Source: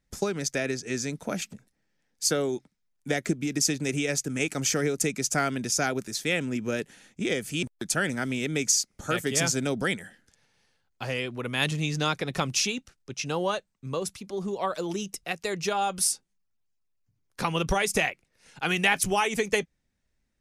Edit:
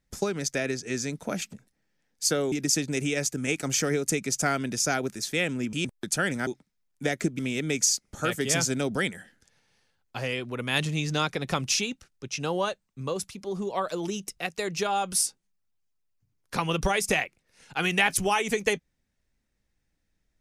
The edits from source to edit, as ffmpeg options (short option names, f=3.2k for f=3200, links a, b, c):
-filter_complex "[0:a]asplit=5[a][b][c][d][e];[a]atrim=end=2.522[f];[b]atrim=start=3.438:end=6.652[g];[c]atrim=start=7.508:end=8.252[h];[d]atrim=start=2.518:end=3.442[i];[e]atrim=start=8.248[j];[f][g]acrossfade=d=0.004:c1=hsin:c2=hsin[k];[k][h]acrossfade=d=0.004:c1=hsin:c2=hsin[l];[l][i]acrossfade=d=0.004:c1=hsin:c2=hsin[m];[m][j]acrossfade=d=0.004:c1=hsin:c2=hsin"